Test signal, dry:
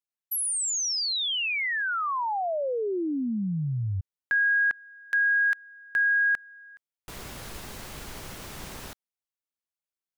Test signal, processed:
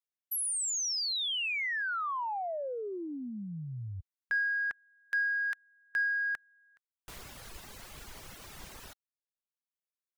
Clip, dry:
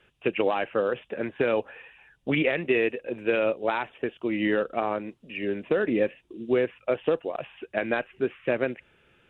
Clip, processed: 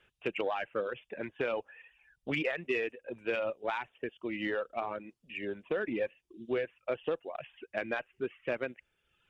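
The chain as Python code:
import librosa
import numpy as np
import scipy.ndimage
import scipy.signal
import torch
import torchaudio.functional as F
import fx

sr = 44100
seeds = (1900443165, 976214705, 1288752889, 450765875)

p1 = fx.dereverb_blind(x, sr, rt60_s=1.0)
p2 = fx.peak_eq(p1, sr, hz=230.0, db=-4.5, octaves=2.9)
p3 = 10.0 ** (-22.0 / 20.0) * np.tanh(p2 / 10.0 ** (-22.0 / 20.0))
p4 = p2 + (p3 * 10.0 ** (-4.0 / 20.0))
y = p4 * 10.0 ** (-8.5 / 20.0)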